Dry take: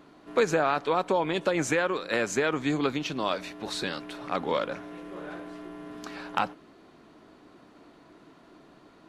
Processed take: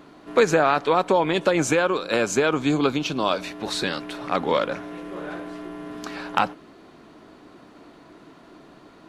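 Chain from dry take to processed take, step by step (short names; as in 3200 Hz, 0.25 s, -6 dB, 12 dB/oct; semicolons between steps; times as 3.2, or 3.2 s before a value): 1.57–3.44 bell 1900 Hz -11.5 dB 0.21 oct; gain +6 dB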